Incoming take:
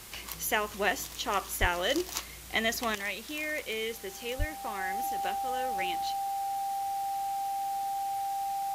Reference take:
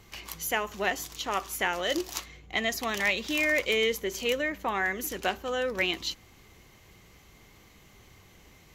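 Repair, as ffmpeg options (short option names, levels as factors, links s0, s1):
-filter_complex "[0:a]bandreject=f=790:w=30,asplit=3[s0][s1][s2];[s0]afade=t=out:st=1.6:d=0.02[s3];[s1]highpass=f=140:w=0.5412,highpass=f=140:w=1.3066,afade=t=in:st=1.6:d=0.02,afade=t=out:st=1.72:d=0.02[s4];[s2]afade=t=in:st=1.72:d=0.02[s5];[s3][s4][s5]amix=inputs=3:normalize=0,asplit=3[s6][s7][s8];[s6]afade=t=out:st=4.38:d=0.02[s9];[s7]highpass=f=140:w=0.5412,highpass=f=140:w=1.3066,afade=t=in:st=4.38:d=0.02,afade=t=out:st=4.5:d=0.02[s10];[s8]afade=t=in:st=4.5:d=0.02[s11];[s9][s10][s11]amix=inputs=3:normalize=0,afwtdn=0.0045,asetnsamples=n=441:p=0,asendcmd='2.95 volume volume 8.5dB',volume=1"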